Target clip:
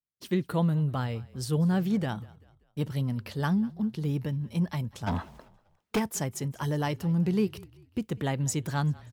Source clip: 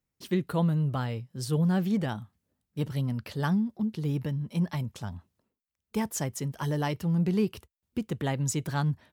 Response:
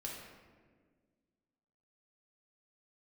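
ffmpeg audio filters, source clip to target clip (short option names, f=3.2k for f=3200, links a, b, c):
-filter_complex "[0:a]asplit=3[a][b][c];[a]afade=t=out:st=5.06:d=0.02[d];[b]asplit=2[e][f];[f]highpass=f=720:p=1,volume=36dB,asoftclip=type=tanh:threshold=-18dB[g];[e][g]amix=inputs=2:normalize=0,lowpass=f=2.2k:p=1,volume=-6dB,afade=t=in:st=5.06:d=0.02,afade=t=out:st=5.98:d=0.02[h];[c]afade=t=in:st=5.98:d=0.02[i];[d][h][i]amix=inputs=3:normalize=0,agate=range=-18dB:threshold=-52dB:ratio=16:detection=peak,asplit=4[j][k][l][m];[k]adelay=194,afreqshift=-32,volume=-22.5dB[n];[l]adelay=388,afreqshift=-64,volume=-30dB[o];[m]adelay=582,afreqshift=-96,volume=-37.6dB[p];[j][n][o][p]amix=inputs=4:normalize=0"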